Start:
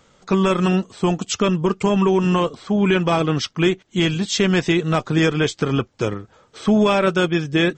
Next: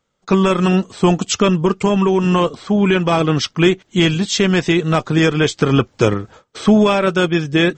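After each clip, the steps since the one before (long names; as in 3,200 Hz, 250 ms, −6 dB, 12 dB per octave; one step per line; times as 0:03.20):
noise gate −48 dBFS, range −22 dB
speech leveller within 5 dB 0.5 s
level +3.5 dB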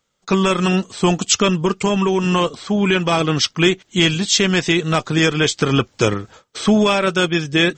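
high-shelf EQ 2,100 Hz +8.5 dB
level −3 dB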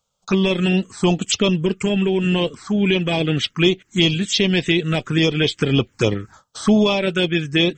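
phaser swept by the level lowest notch 320 Hz, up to 1,600 Hz, full sweep at −11 dBFS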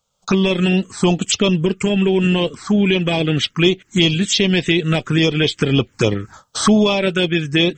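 camcorder AGC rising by 18 dB per second
level +1.5 dB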